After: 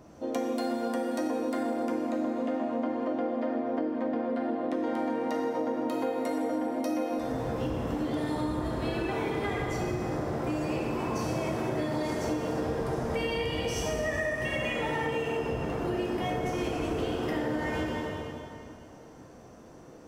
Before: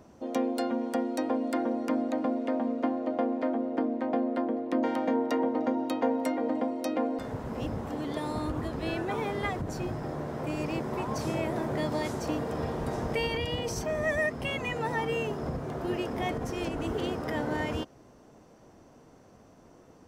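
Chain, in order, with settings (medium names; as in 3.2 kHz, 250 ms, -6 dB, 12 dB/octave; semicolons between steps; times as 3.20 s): plate-style reverb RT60 2.5 s, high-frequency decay 0.85×, DRR -3.5 dB; compression, threshold -27 dBFS, peak gain reduction 9 dB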